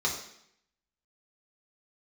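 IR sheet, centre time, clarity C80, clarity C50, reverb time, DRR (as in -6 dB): 28 ms, 9.0 dB, 6.5 dB, 0.70 s, -3.5 dB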